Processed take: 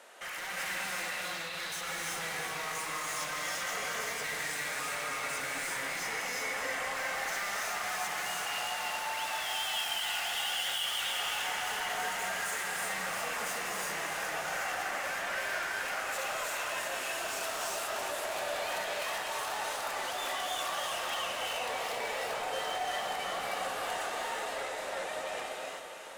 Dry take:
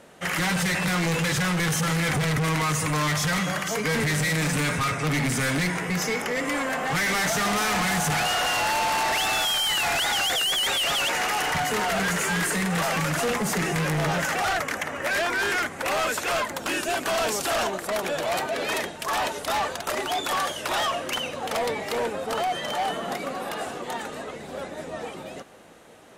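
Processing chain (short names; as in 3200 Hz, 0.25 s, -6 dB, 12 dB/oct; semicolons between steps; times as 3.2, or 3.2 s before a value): HPF 700 Hz 12 dB/oct; limiter -26.5 dBFS, peak gain reduction 10 dB; 1.1–1.53 ladder low-pass 4500 Hz, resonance 65%; soft clip -36.5 dBFS, distortion -10 dB; echo with dull and thin repeats by turns 0.164 s, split 910 Hz, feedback 81%, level -8 dB; non-linear reverb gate 0.41 s rising, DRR -3.5 dB; gain -1 dB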